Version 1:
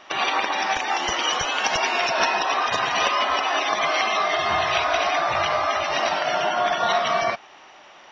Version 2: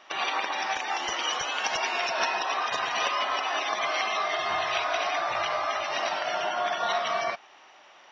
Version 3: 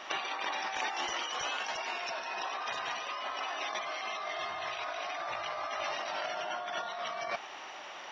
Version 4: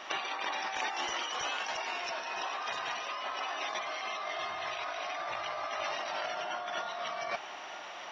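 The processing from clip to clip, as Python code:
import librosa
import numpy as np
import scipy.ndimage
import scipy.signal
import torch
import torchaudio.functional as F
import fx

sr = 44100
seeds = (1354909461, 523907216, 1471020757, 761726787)

y1 = fx.low_shelf(x, sr, hz=220.0, db=-10.5)
y1 = y1 * librosa.db_to_amplitude(-5.5)
y2 = fx.over_compress(y1, sr, threshold_db=-37.0, ratio=-1.0)
y3 = y2 + 10.0 ** (-13.0 / 20.0) * np.pad(y2, (int(961 * sr / 1000.0), 0))[:len(y2)]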